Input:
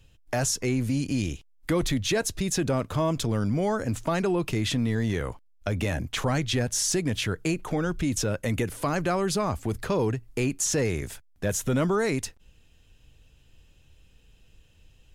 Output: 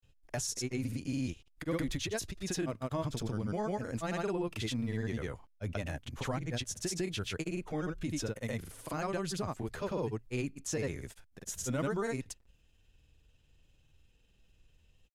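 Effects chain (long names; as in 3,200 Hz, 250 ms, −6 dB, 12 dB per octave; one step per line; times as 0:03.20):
granular cloud, pitch spread up and down by 0 semitones
level −8 dB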